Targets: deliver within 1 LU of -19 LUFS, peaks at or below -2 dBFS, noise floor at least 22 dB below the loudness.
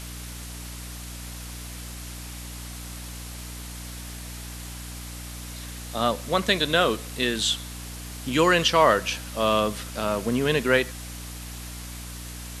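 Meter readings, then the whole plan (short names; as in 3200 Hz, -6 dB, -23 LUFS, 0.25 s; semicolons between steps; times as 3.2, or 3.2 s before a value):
hum 60 Hz; harmonics up to 300 Hz; hum level -36 dBFS; noise floor -38 dBFS; noise floor target -46 dBFS; loudness -23.5 LUFS; peak -5.5 dBFS; loudness target -19.0 LUFS
-> notches 60/120/180/240/300 Hz; noise print and reduce 8 dB; gain +4.5 dB; limiter -2 dBFS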